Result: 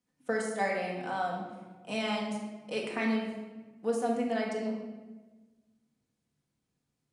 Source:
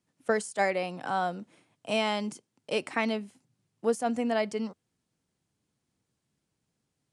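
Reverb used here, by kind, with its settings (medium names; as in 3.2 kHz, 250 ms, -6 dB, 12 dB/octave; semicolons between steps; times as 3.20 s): simulated room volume 930 m³, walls mixed, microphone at 1.9 m; trim -7 dB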